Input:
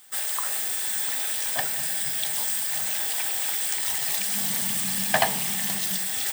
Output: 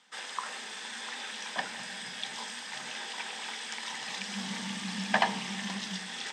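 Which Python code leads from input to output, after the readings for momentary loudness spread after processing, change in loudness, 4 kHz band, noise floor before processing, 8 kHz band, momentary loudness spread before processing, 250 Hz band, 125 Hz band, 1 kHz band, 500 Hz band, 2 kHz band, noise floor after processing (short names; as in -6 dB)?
8 LU, -11.5 dB, -5.0 dB, -29 dBFS, -16.5 dB, 2 LU, 0.0 dB, -3.0 dB, -2.5 dB, -7.0 dB, -3.5 dB, -42 dBFS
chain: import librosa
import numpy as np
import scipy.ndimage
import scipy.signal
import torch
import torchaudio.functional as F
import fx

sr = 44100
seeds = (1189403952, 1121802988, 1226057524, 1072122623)

y = fx.cabinet(x, sr, low_hz=180.0, low_slope=24, high_hz=5600.0, hz=(210.0, 660.0, 970.0, 4400.0), db=(8, -5, 5, -4))
y = y * librosa.db_to_amplitude(-3.5)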